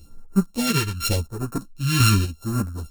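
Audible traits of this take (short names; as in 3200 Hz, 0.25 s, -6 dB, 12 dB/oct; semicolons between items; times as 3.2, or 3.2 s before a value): a buzz of ramps at a fixed pitch in blocks of 32 samples; phasing stages 2, 0.86 Hz, lowest notch 590–3100 Hz; chopped level 1 Hz, depth 60%, duty 25%; a shimmering, thickened sound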